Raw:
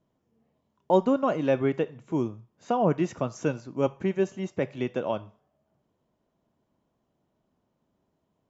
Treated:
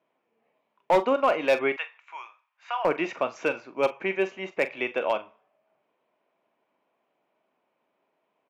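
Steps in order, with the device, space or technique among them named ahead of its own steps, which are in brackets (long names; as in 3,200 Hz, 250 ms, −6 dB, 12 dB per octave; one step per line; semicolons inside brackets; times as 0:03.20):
0:01.72–0:02.85: high-pass filter 1,000 Hz 24 dB per octave
dynamic equaliser 4,700 Hz, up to +5 dB, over −49 dBFS, Q 0.92
megaphone (band-pass filter 530–2,700 Hz; parametric band 2,400 Hz +10.5 dB 0.41 octaves; hard clipping −20 dBFS, distortion −15 dB; double-tracking delay 42 ms −13 dB)
level +5.5 dB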